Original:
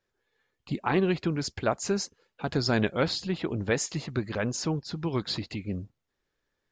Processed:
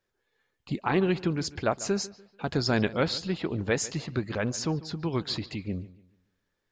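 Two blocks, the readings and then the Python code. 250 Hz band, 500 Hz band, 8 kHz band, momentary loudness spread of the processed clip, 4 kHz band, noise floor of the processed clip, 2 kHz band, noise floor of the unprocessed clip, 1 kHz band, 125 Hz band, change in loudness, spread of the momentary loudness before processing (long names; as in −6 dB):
0.0 dB, 0.0 dB, 0.0 dB, 10 LU, 0.0 dB, −80 dBFS, 0.0 dB, −82 dBFS, 0.0 dB, 0.0 dB, 0.0 dB, 10 LU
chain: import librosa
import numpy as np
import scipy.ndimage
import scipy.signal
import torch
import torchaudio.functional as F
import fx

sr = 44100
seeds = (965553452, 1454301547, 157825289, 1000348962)

y = fx.echo_bbd(x, sr, ms=145, stages=4096, feedback_pct=34, wet_db=-18.5)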